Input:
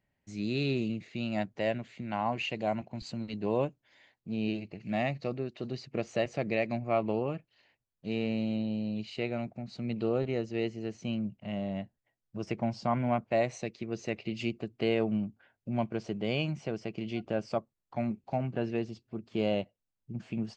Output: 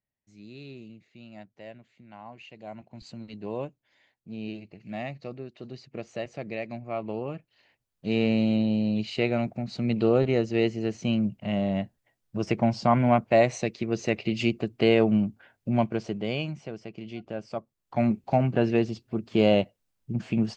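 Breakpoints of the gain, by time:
2.49 s -13.5 dB
3.04 s -4 dB
6.94 s -4 dB
8.22 s +8 dB
15.7 s +8 dB
16.73 s -3 dB
17.51 s -3 dB
18.05 s +9 dB

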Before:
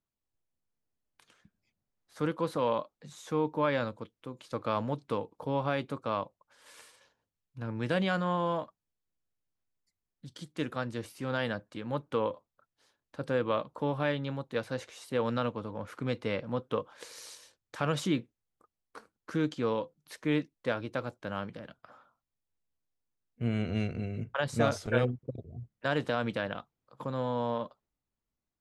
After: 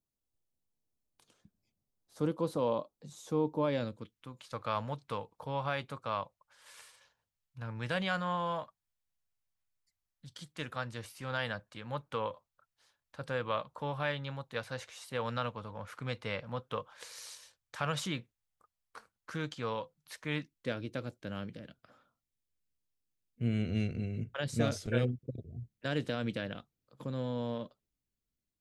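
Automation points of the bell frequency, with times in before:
bell -12 dB 1.5 oct
3.62 s 1800 Hz
4.43 s 310 Hz
20.29 s 310 Hz
20.71 s 960 Hz

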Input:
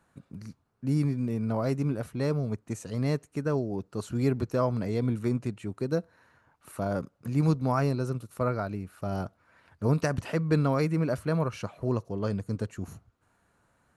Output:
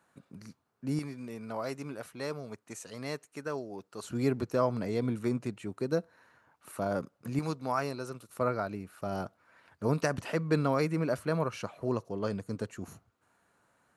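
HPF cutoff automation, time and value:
HPF 6 dB/oct
310 Hz
from 0.99 s 900 Hz
from 4.04 s 220 Hz
from 7.39 s 710 Hz
from 8.29 s 250 Hz

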